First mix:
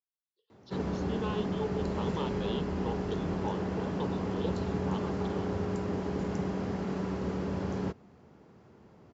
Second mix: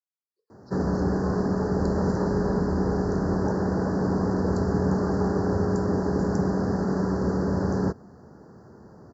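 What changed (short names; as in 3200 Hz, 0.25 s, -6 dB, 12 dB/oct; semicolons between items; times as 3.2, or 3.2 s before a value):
background +8.5 dB; master: add elliptic band-stop 1700–4600 Hz, stop band 40 dB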